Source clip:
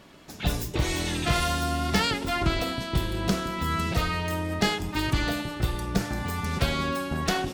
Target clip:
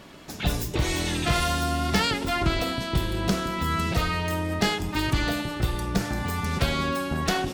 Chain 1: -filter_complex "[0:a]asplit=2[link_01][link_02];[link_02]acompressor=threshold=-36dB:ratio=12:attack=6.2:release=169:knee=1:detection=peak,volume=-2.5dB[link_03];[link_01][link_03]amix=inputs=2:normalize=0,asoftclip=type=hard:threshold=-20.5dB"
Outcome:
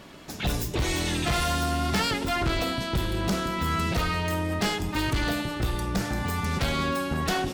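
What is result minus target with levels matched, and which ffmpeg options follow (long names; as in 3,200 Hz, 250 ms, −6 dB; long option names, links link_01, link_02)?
hard clipping: distortion +17 dB
-filter_complex "[0:a]asplit=2[link_01][link_02];[link_02]acompressor=threshold=-36dB:ratio=12:attack=6.2:release=169:knee=1:detection=peak,volume=-2.5dB[link_03];[link_01][link_03]amix=inputs=2:normalize=0,asoftclip=type=hard:threshold=-13dB"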